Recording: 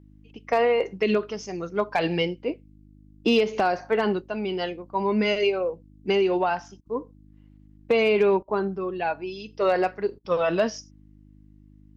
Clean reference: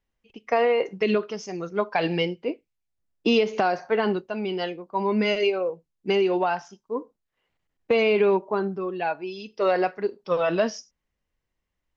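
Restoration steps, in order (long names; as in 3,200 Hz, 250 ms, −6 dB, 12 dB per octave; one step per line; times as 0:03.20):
clipped peaks rebuilt −12 dBFS
hum removal 51.2 Hz, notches 6
repair the gap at 0:06.81/0:08.43/0:10.19, 48 ms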